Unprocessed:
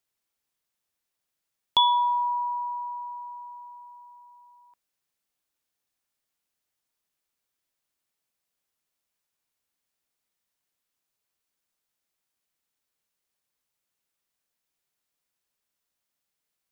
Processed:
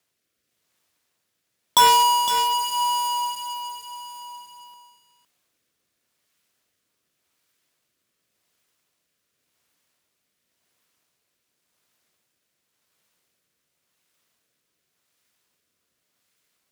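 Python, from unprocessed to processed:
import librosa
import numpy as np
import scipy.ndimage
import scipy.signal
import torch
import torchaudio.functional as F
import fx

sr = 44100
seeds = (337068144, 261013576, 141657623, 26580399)

p1 = fx.halfwave_hold(x, sr)
p2 = scipy.signal.sosfilt(scipy.signal.butter(2, 76.0, 'highpass', fs=sr, output='sos'), p1)
p3 = fx.notch(p2, sr, hz=820.0, q=14.0)
p4 = fx.over_compress(p3, sr, threshold_db=-28.0, ratio=-1.0)
p5 = p3 + (p4 * librosa.db_to_amplitude(-2.0))
p6 = fx.rotary(p5, sr, hz=0.9)
p7 = p6 + fx.echo_single(p6, sr, ms=510, db=-9.0, dry=0)
y = p7 * librosa.db_to_amplitude(2.0)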